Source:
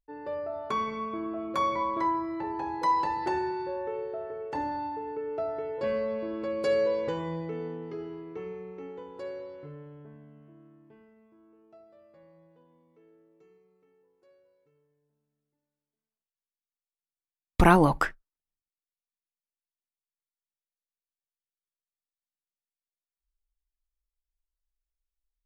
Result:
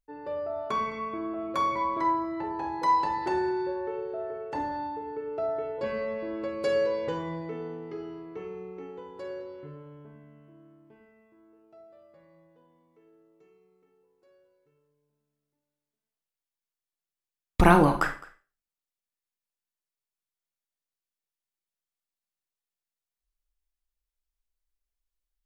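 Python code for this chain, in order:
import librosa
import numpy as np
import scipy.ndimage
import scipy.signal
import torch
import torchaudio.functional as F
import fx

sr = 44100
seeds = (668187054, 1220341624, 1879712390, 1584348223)

p1 = x + fx.echo_single(x, sr, ms=211, db=-21.5, dry=0)
y = fx.rev_schroeder(p1, sr, rt60_s=0.34, comb_ms=31, drr_db=7.0)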